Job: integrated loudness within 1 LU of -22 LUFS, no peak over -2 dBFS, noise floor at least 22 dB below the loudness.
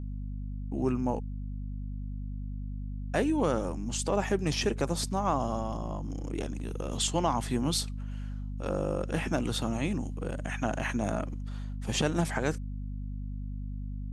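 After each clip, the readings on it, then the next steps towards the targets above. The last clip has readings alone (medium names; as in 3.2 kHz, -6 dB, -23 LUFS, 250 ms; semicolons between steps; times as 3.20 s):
hum 50 Hz; highest harmonic 250 Hz; hum level -34 dBFS; loudness -32.5 LUFS; peak level -12.5 dBFS; loudness target -22.0 LUFS
-> hum notches 50/100/150/200/250 Hz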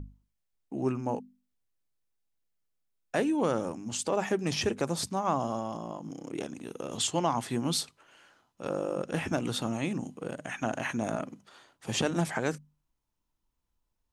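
hum not found; loudness -32.0 LUFS; peak level -13.5 dBFS; loudness target -22.0 LUFS
-> trim +10 dB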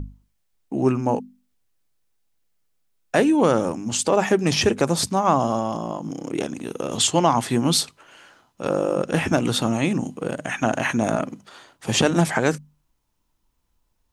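loudness -22.0 LUFS; peak level -3.5 dBFS; noise floor -70 dBFS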